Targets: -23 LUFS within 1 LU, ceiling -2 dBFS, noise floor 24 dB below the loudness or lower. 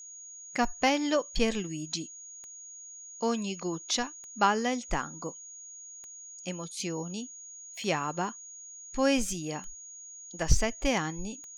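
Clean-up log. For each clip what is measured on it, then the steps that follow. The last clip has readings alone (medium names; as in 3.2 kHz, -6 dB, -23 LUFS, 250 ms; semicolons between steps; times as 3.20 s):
clicks found 7; steady tone 6.7 kHz; tone level -44 dBFS; loudness -31.0 LUFS; peak level -8.5 dBFS; loudness target -23.0 LUFS
-> de-click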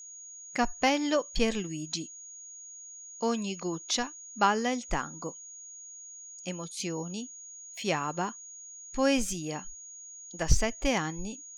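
clicks found 0; steady tone 6.7 kHz; tone level -44 dBFS
-> band-stop 6.7 kHz, Q 30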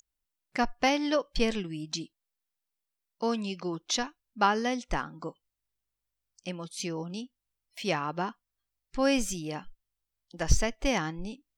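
steady tone not found; loudness -31.0 LUFS; peak level -8.5 dBFS; loudness target -23.0 LUFS
-> trim +8 dB; peak limiter -2 dBFS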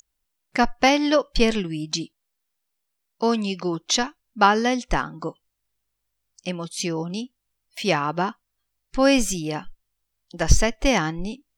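loudness -23.0 LUFS; peak level -2.0 dBFS; noise floor -78 dBFS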